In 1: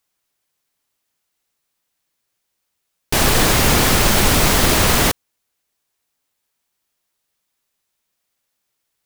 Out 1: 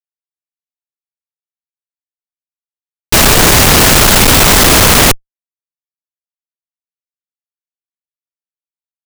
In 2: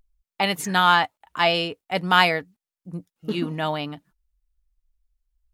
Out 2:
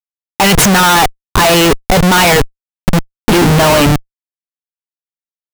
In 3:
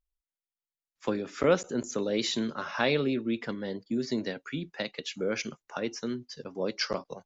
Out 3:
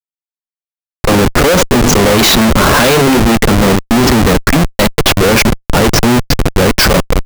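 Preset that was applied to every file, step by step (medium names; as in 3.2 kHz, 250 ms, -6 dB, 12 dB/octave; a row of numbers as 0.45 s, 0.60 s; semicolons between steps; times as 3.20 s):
waveshaping leveller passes 3; Schmitt trigger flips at -26 dBFS; peak normalisation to -2 dBFS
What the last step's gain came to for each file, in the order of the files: +7.0 dB, +8.0 dB, +15.5 dB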